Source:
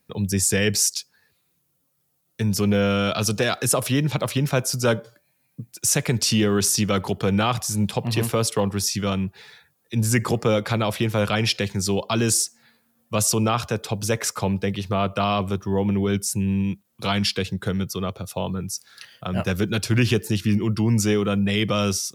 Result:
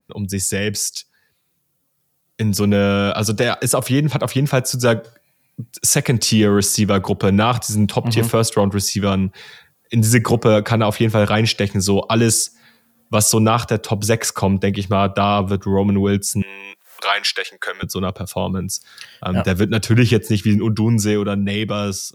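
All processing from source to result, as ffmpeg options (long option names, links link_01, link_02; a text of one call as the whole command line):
ffmpeg -i in.wav -filter_complex "[0:a]asettb=1/sr,asplit=3[link_01][link_02][link_03];[link_01]atrim=end=16.424[link_04];[link_02]atrim=start=16.42:end=17.83,asetpts=PTS-STARTPTS,afade=type=in:duration=0.004:curve=qsin,afade=type=out:start_time=1.406:duration=0.004:curve=qsin,acompressor=mode=upward:threshold=-27dB:ratio=2.5:attack=3.2:release=140:knee=2.83:detection=peak,highpass=frequency=540:width=0.5412,highpass=frequency=540:width=1.3066,equalizer=frequency=1700:width_type=o:width=0.85:gain=7.5[link_05];[link_03]atrim=start=17.826[link_06];[link_04][link_05]acrossfade=duration=0.004:curve1=hsin:curve2=qsin[link_07];[link_07][link_06]acrossfade=duration=0.004:curve1=qsin:curve2=hsin,dynaudnorm=framelen=440:gausssize=9:maxgain=11.5dB,adynamicequalizer=threshold=0.0355:dfrequency=1600:dqfactor=0.7:tfrequency=1600:tqfactor=0.7:attack=5:release=100:ratio=0.375:range=2:mode=cutabove:tftype=highshelf" out.wav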